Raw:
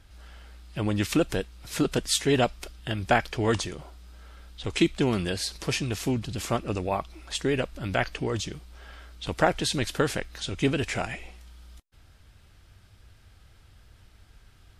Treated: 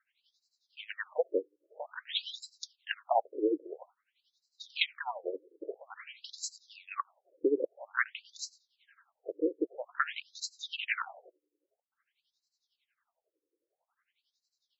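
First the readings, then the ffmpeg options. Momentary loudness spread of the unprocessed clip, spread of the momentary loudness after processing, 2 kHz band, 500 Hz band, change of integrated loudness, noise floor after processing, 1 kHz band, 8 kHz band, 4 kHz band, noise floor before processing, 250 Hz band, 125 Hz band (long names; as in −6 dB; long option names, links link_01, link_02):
13 LU, 16 LU, −5.5 dB, −7.0 dB, −8.0 dB, below −85 dBFS, −6.5 dB, −12.5 dB, −7.5 dB, −56 dBFS, −12.0 dB, below −40 dB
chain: -af "agate=range=-12dB:threshold=-41dB:ratio=16:detection=peak,tremolo=f=11:d=0.82,afftfilt=real='re*between(b*sr/1024,370*pow(5600/370,0.5+0.5*sin(2*PI*0.5*pts/sr))/1.41,370*pow(5600/370,0.5+0.5*sin(2*PI*0.5*pts/sr))*1.41)':imag='im*between(b*sr/1024,370*pow(5600/370,0.5+0.5*sin(2*PI*0.5*pts/sr))/1.41,370*pow(5600/370,0.5+0.5*sin(2*PI*0.5*pts/sr))*1.41)':win_size=1024:overlap=0.75,volume=3.5dB"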